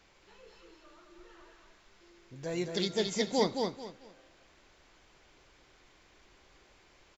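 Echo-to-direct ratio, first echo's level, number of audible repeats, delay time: -4.0 dB, -4.5 dB, 3, 219 ms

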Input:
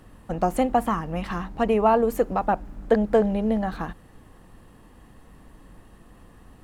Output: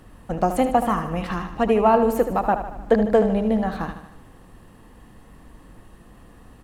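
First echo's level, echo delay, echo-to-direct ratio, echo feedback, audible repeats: -10.0 dB, 76 ms, -8.5 dB, 56%, 5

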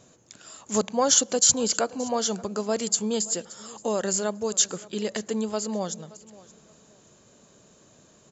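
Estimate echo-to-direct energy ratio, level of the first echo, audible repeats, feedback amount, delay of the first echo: -21.0 dB, -21.0 dB, 2, 23%, 574 ms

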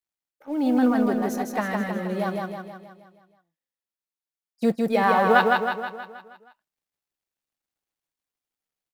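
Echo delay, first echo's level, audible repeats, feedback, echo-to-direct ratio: 159 ms, -3.0 dB, 6, 53%, -1.5 dB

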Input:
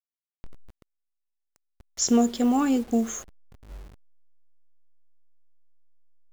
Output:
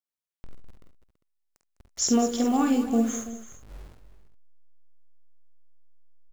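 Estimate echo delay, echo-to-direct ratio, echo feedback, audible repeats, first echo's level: 48 ms, -3.5 dB, no regular repeats, 4, -5.5 dB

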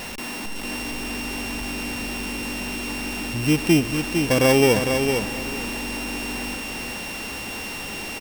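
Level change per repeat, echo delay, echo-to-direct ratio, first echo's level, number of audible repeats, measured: -14.5 dB, 455 ms, -6.0 dB, -6.0 dB, 2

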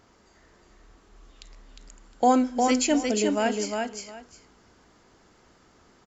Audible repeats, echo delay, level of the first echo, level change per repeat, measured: 2, 356 ms, -4.0 dB, -14.0 dB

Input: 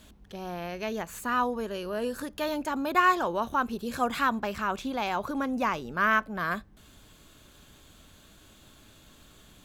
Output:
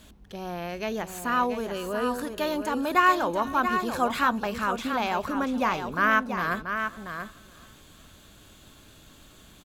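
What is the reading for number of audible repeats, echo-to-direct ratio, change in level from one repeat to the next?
4, -7.5 dB, no regular repeats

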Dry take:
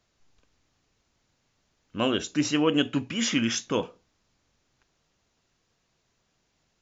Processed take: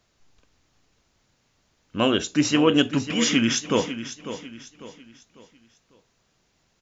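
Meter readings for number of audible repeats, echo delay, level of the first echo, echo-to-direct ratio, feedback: 3, 548 ms, -12.0 dB, -11.5 dB, 38%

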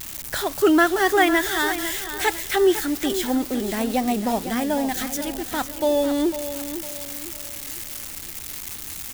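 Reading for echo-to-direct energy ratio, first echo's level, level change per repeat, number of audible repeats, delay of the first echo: -10.5 dB, -11.0 dB, -8.5 dB, 3, 502 ms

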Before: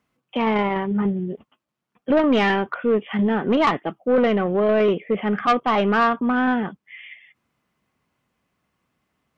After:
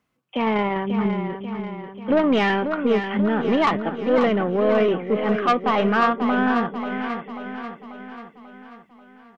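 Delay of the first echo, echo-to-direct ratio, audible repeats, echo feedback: 539 ms, -6.5 dB, 6, 54%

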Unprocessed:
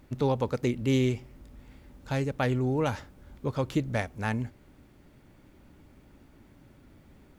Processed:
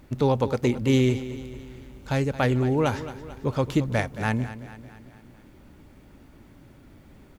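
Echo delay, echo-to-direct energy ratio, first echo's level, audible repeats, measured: 222 ms, -12.5 dB, -14.0 dB, 4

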